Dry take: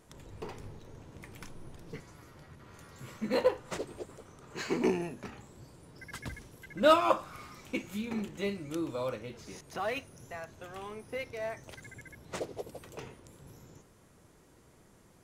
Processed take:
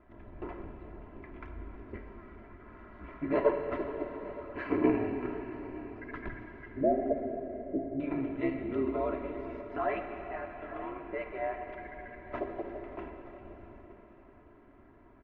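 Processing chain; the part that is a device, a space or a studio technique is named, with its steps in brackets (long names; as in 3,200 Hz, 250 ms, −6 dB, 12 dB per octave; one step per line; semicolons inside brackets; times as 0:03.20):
low-pass filter 2,100 Hz 24 dB per octave
0:06.70–0:08.00: elliptic low-pass filter 550 Hz, stop band 50 dB
ring-modulated robot voice (ring modulation 65 Hz; comb filter 3 ms, depth 71%)
single-tap delay 920 ms −19 dB
dense smooth reverb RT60 4.4 s, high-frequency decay 1×, DRR 4 dB
level +2.5 dB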